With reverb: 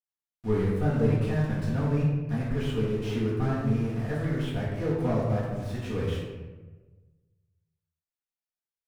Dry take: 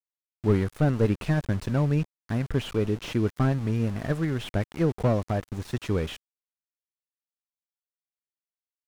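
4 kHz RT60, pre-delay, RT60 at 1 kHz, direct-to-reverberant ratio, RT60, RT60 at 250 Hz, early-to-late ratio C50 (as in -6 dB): 0.70 s, 4 ms, 1.1 s, -9.5 dB, 1.3 s, 1.4 s, 0.5 dB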